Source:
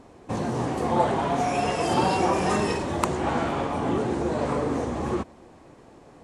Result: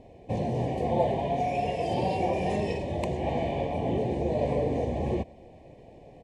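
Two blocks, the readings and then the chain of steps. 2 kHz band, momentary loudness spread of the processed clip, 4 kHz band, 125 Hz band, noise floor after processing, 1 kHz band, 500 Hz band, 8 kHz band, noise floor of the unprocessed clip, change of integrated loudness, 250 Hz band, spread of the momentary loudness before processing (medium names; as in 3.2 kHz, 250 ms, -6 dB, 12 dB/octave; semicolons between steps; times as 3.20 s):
-8.5 dB, 4 LU, -7.5 dB, 0.0 dB, -51 dBFS, -5.5 dB, -1.5 dB, under -10 dB, -51 dBFS, -3.5 dB, -4.5 dB, 6 LU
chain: gain riding within 3 dB 2 s; Chebyshev band-stop 800–2200 Hz, order 2; tone controls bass +2 dB, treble -13 dB; comb 1.7 ms, depth 38%; trim -2.5 dB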